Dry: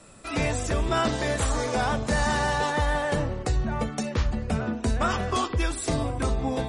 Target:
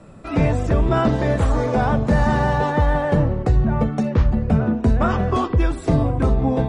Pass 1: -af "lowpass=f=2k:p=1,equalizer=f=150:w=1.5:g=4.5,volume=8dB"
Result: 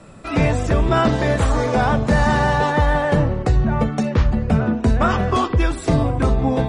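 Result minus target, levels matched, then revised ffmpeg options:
2000 Hz band +4.0 dB
-af "lowpass=f=830:p=1,equalizer=f=150:w=1.5:g=4.5,volume=8dB"

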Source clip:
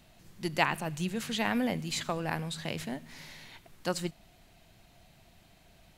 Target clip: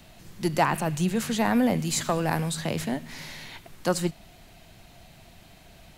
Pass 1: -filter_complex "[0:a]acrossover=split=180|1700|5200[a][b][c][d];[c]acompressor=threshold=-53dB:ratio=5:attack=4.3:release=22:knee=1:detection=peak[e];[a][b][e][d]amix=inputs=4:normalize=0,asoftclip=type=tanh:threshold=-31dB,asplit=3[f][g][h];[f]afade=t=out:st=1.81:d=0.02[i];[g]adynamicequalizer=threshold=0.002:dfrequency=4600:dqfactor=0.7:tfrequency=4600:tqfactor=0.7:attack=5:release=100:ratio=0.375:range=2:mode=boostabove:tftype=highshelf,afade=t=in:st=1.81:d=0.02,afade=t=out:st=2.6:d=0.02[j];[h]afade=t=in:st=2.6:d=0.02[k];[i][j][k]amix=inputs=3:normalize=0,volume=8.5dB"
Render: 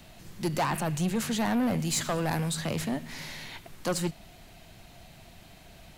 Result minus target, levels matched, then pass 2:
soft clip: distortion +12 dB
-filter_complex "[0:a]acrossover=split=180|1700|5200[a][b][c][d];[c]acompressor=threshold=-53dB:ratio=5:attack=4.3:release=22:knee=1:detection=peak[e];[a][b][e][d]amix=inputs=4:normalize=0,asoftclip=type=tanh:threshold=-19.5dB,asplit=3[f][g][h];[f]afade=t=out:st=1.81:d=0.02[i];[g]adynamicequalizer=threshold=0.002:dfrequency=4600:dqfactor=0.7:tfrequency=4600:tqfactor=0.7:attack=5:release=100:ratio=0.375:range=2:mode=boostabove:tftype=highshelf,afade=t=in:st=1.81:d=0.02,afade=t=out:st=2.6:d=0.02[j];[h]afade=t=in:st=2.6:d=0.02[k];[i][j][k]amix=inputs=3:normalize=0,volume=8.5dB"

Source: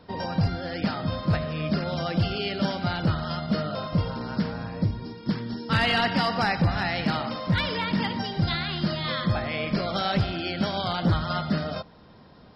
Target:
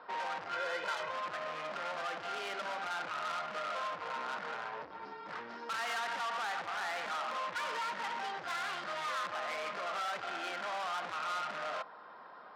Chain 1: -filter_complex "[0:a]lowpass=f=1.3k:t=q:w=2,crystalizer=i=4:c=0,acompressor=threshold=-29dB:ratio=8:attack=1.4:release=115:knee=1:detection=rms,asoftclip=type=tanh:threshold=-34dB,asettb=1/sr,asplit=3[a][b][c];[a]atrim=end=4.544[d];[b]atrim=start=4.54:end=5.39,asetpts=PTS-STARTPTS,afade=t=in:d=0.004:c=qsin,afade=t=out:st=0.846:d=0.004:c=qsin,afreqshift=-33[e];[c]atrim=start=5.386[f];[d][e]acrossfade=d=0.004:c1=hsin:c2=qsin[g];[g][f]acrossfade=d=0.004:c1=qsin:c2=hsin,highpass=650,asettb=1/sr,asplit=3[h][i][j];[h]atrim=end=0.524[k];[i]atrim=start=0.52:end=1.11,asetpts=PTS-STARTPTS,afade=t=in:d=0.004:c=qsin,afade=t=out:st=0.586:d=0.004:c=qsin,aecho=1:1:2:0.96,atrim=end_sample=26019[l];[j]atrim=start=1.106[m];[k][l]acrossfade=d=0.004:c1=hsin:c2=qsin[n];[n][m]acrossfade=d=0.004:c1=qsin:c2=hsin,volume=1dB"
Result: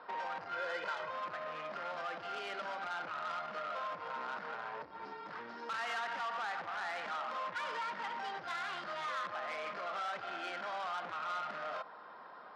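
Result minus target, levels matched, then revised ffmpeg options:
compressor: peak gain reduction +5.5 dB
-filter_complex "[0:a]lowpass=f=1.3k:t=q:w=2,crystalizer=i=4:c=0,acompressor=threshold=-22.5dB:ratio=8:attack=1.4:release=115:knee=1:detection=rms,asoftclip=type=tanh:threshold=-34dB,asettb=1/sr,asplit=3[a][b][c];[a]atrim=end=4.544[d];[b]atrim=start=4.54:end=5.39,asetpts=PTS-STARTPTS,afade=t=in:d=0.004:c=qsin,afade=t=out:st=0.846:d=0.004:c=qsin,afreqshift=-33[e];[c]atrim=start=5.386[f];[d][e]acrossfade=d=0.004:c1=hsin:c2=qsin[g];[g][f]acrossfade=d=0.004:c1=qsin:c2=hsin,highpass=650,asettb=1/sr,asplit=3[h][i][j];[h]atrim=end=0.524[k];[i]atrim=start=0.52:end=1.11,asetpts=PTS-STARTPTS,afade=t=in:d=0.004:c=qsin,afade=t=out:st=0.586:d=0.004:c=qsin,aecho=1:1:2:0.96,atrim=end_sample=26019[l];[j]atrim=start=1.106[m];[k][l]acrossfade=d=0.004:c1=hsin:c2=qsin[n];[n][m]acrossfade=d=0.004:c1=qsin:c2=hsin,volume=1dB"

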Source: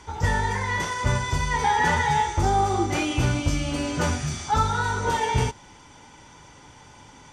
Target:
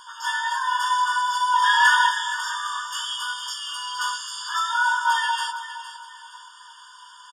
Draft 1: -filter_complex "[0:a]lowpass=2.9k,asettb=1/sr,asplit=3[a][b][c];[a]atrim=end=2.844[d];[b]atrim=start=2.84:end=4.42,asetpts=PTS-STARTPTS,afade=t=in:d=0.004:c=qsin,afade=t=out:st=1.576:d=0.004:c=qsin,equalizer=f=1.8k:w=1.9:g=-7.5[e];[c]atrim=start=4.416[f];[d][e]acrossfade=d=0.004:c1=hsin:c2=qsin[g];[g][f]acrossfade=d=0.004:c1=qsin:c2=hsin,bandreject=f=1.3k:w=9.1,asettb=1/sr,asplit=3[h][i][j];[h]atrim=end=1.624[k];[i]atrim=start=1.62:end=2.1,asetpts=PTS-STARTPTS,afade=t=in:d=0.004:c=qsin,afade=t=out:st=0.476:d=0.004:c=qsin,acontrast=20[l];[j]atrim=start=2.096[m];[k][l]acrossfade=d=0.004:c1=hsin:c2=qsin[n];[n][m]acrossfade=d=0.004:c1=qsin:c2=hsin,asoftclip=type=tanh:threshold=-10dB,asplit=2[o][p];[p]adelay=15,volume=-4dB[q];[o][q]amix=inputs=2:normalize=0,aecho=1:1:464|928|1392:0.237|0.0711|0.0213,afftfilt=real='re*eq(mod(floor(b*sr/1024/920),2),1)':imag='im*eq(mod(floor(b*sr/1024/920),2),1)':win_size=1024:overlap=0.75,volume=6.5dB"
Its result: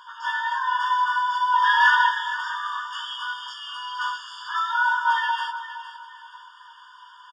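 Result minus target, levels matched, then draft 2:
4000 Hz band -3.5 dB
-filter_complex "[0:a]asettb=1/sr,asplit=3[a][b][c];[a]atrim=end=2.844[d];[b]atrim=start=2.84:end=4.42,asetpts=PTS-STARTPTS,afade=t=in:d=0.004:c=qsin,afade=t=out:st=1.576:d=0.004:c=qsin,equalizer=f=1.8k:w=1.9:g=-7.5[e];[c]atrim=start=4.416[f];[d][e]acrossfade=d=0.004:c1=hsin:c2=qsin[g];[g][f]acrossfade=d=0.004:c1=qsin:c2=hsin,bandreject=f=1.3k:w=9.1,asettb=1/sr,asplit=3[h][i][j];[h]atrim=end=1.624[k];[i]atrim=start=1.62:end=2.1,asetpts=PTS-STARTPTS,afade=t=in:d=0.004:c=qsin,afade=t=out:st=0.476:d=0.004:c=qsin,acontrast=20[l];[j]atrim=start=2.096[m];[k][l]acrossfade=d=0.004:c1=hsin:c2=qsin[n];[n][m]acrossfade=d=0.004:c1=qsin:c2=hsin,asoftclip=type=tanh:threshold=-10dB,asplit=2[o][p];[p]adelay=15,volume=-4dB[q];[o][q]amix=inputs=2:normalize=0,aecho=1:1:464|928|1392:0.237|0.0711|0.0213,afftfilt=real='re*eq(mod(floor(b*sr/1024/920),2),1)':imag='im*eq(mod(floor(b*sr/1024/920),2),1)':win_size=1024:overlap=0.75,volume=6.5dB"

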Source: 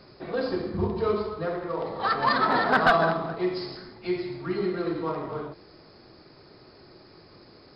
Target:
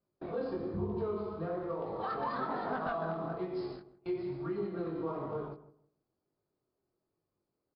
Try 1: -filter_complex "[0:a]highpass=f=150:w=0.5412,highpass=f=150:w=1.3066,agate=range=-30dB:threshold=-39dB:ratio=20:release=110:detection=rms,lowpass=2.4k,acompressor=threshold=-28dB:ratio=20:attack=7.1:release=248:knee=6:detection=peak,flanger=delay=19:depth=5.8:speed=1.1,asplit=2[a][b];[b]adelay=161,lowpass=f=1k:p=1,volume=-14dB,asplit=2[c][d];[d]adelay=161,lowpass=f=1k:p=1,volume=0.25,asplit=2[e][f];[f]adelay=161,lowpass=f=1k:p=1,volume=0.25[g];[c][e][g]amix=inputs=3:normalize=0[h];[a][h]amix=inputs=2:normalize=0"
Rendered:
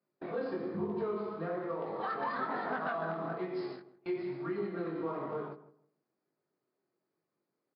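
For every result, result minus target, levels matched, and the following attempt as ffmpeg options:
2000 Hz band +4.5 dB; 125 Hz band -3.5 dB
-filter_complex "[0:a]highpass=f=150:w=0.5412,highpass=f=150:w=1.3066,agate=range=-30dB:threshold=-39dB:ratio=20:release=110:detection=rms,lowpass=2.4k,equalizer=f=1.9k:w=1.6:g=-8,acompressor=threshold=-28dB:ratio=20:attack=7.1:release=248:knee=6:detection=peak,flanger=delay=19:depth=5.8:speed=1.1,asplit=2[a][b];[b]adelay=161,lowpass=f=1k:p=1,volume=-14dB,asplit=2[c][d];[d]adelay=161,lowpass=f=1k:p=1,volume=0.25,asplit=2[e][f];[f]adelay=161,lowpass=f=1k:p=1,volume=0.25[g];[c][e][g]amix=inputs=3:normalize=0[h];[a][h]amix=inputs=2:normalize=0"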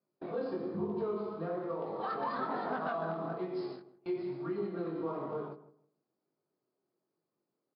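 125 Hz band -3.0 dB
-filter_complex "[0:a]agate=range=-30dB:threshold=-39dB:ratio=20:release=110:detection=rms,lowpass=2.4k,equalizer=f=1.9k:w=1.6:g=-8,acompressor=threshold=-28dB:ratio=20:attack=7.1:release=248:knee=6:detection=peak,flanger=delay=19:depth=5.8:speed=1.1,asplit=2[a][b];[b]adelay=161,lowpass=f=1k:p=1,volume=-14dB,asplit=2[c][d];[d]adelay=161,lowpass=f=1k:p=1,volume=0.25,asplit=2[e][f];[f]adelay=161,lowpass=f=1k:p=1,volume=0.25[g];[c][e][g]amix=inputs=3:normalize=0[h];[a][h]amix=inputs=2:normalize=0"

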